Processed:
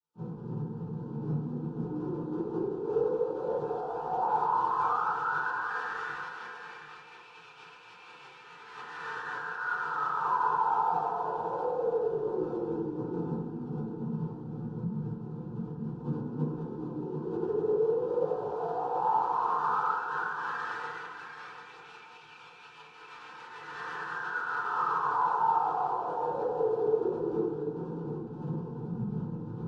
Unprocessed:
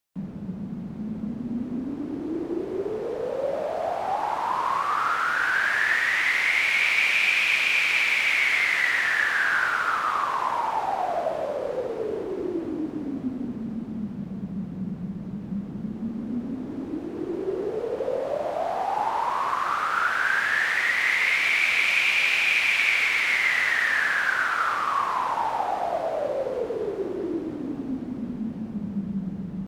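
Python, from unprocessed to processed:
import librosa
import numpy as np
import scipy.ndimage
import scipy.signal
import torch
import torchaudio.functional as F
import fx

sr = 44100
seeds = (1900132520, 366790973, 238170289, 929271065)

p1 = scipy.signal.sosfilt(scipy.signal.butter(2, 70.0, 'highpass', fs=sr, output='sos'), x)
p2 = fx.high_shelf(p1, sr, hz=3100.0, db=7.5)
p3 = fx.notch(p2, sr, hz=1800.0, q=11.0)
p4 = fx.over_compress(p3, sr, threshold_db=-24.0, ratio=-0.5)
p5 = fx.chorus_voices(p4, sr, voices=2, hz=0.57, base_ms=28, depth_ms=2.6, mix_pct=55)
p6 = fx.pitch_keep_formants(p5, sr, semitones=-8.0)
p7 = fx.spacing_loss(p6, sr, db_at_10k=28)
p8 = fx.fixed_phaser(p7, sr, hz=420.0, stages=8)
p9 = p8 + fx.echo_single(p8, sr, ms=741, db=-9.5, dry=0)
p10 = fx.rev_fdn(p9, sr, rt60_s=0.63, lf_ratio=0.85, hf_ratio=0.3, size_ms=20.0, drr_db=-8.0)
y = p10 * 10.0 ** (-6.5 / 20.0)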